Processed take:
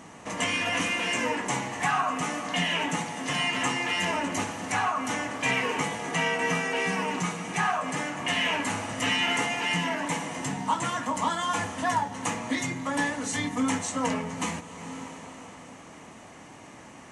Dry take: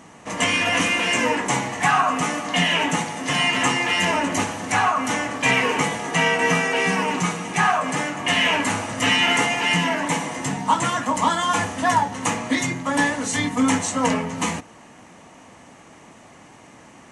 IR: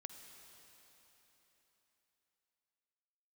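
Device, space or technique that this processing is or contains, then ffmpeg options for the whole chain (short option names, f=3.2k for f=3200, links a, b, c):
ducked reverb: -filter_complex "[0:a]asplit=3[a][b][c];[1:a]atrim=start_sample=2205[d];[b][d]afir=irnorm=-1:irlink=0[e];[c]apad=whole_len=754711[f];[e][f]sidechaincompress=threshold=-32dB:ratio=8:attack=5.8:release=433,volume=9.5dB[g];[a][g]amix=inputs=2:normalize=0,volume=-9dB"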